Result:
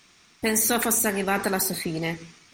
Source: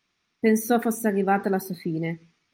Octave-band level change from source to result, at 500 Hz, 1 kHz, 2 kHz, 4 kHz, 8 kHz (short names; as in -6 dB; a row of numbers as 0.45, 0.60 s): -3.0, -2.5, +4.0, +12.5, +13.5 dB